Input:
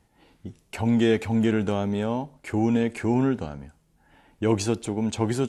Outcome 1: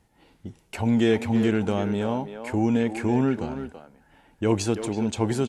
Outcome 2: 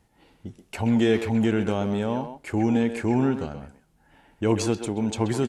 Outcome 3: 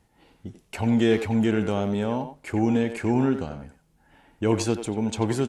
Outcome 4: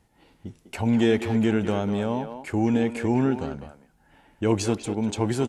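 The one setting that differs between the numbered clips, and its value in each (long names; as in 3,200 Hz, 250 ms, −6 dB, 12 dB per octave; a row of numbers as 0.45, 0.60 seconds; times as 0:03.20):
far-end echo of a speakerphone, delay time: 330, 130, 90, 200 milliseconds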